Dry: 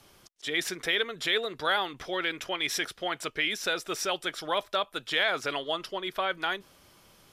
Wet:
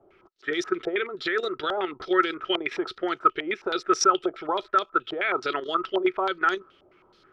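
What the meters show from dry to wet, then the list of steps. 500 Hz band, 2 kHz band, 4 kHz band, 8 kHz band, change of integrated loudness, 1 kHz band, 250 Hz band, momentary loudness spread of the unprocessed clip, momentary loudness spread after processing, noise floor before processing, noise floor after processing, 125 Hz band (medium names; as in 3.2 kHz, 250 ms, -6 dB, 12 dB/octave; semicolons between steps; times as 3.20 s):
+6.0 dB, +0.5 dB, -3.5 dB, +2.0 dB, +3.5 dB, +8.0 dB, +9.5 dB, 5 LU, 8 LU, -59 dBFS, -61 dBFS, no reading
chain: level held to a coarse grid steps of 11 dB; small resonant body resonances 370/1300 Hz, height 16 dB, ringing for 40 ms; step-sequenced low-pass 9.4 Hz 690–5700 Hz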